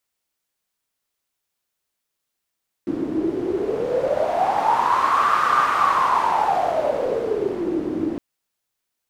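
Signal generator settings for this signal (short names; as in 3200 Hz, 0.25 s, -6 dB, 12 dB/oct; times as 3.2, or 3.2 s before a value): wind-like swept noise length 5.31 s, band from 310 Hz, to 1200 Hz, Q 9.4, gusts 1, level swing 6.5 dB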